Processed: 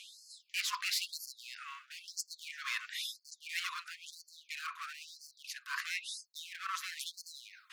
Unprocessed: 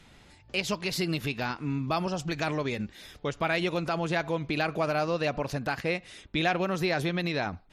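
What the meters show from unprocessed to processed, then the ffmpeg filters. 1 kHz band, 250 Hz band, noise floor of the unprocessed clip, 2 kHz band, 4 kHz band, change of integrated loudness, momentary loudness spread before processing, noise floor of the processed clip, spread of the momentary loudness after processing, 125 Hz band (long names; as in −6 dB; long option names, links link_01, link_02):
−13.0 dB, below −40 dB, −56 dBFS, −8.0 dB, −3.5 dB, −10.0 dB, 5 LU, −70 dBFS, 14 LU, below −40 dB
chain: -af "volume=31dB,asoftclip=hard,volume=-31dB,highpass=frequency=740:width_type=q:width=4.9,areverse,acompressor=threshold=-40dB:ratio=8,areverse,afftfilt=real='re*gte(b*sr/1024,970*pow(4300/970,0.5+0.5*sin(2*PI*1*pts/sr)))':imag='im*gte(b*sr/1024,970*pow(4300/970,0.5+0.5*sin(2*PI*1*pts/sr)))':win_size=1024:overlap=0.75,volume=10dB"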